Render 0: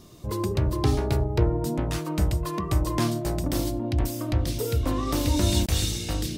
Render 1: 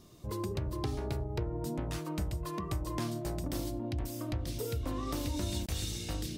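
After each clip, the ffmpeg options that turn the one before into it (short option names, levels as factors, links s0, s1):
-af "acompressor=threshold=0.0708:ratio=6,volume=0.422"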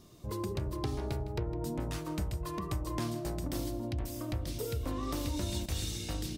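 -af "aecho=1:1:158:0.178"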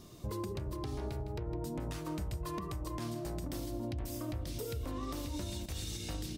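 -af "alimiter=level_in=2.99:limit=0.0631:level=0:latency=1:release=274,volume=0.335,volume=1.5"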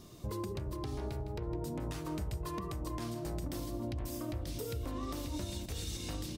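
-filter_complex "[0:a]asplit=2[s0][s1];[s1]adelay=1108,volume=0.251,highshelf=f=4000:g=-24.9[s2];[s0][s2]amix=inputs=2:normalize=0"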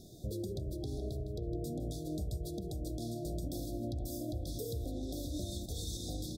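-af "afftfilt=real='re*(1-between(b*sr/4096,780,3300))':imag='im*(1-between(b*sr/4096,780,3300))':win_size=4096:overlap=0.75"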